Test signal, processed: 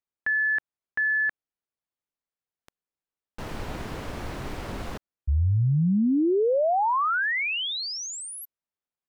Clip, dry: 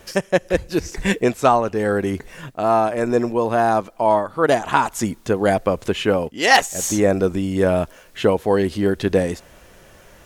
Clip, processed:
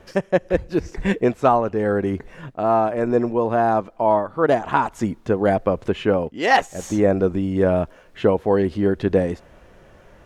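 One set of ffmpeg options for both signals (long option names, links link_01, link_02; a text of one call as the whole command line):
ffmpeg -i in.wav -af "lowpass=frequency=1400:poles=1" out.wav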